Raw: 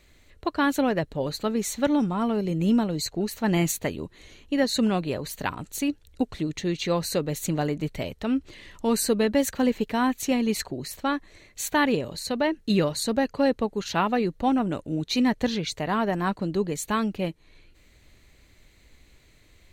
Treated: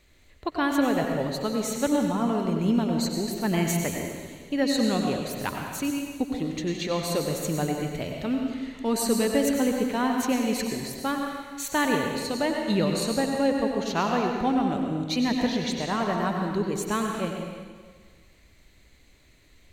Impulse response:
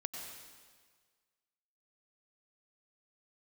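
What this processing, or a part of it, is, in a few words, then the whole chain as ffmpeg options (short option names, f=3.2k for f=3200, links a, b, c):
stairwell: -filter_complex "[1:a]atrim=start_sample=2205[a];[0:a][a]afir=irnorm=-1:irlink=0"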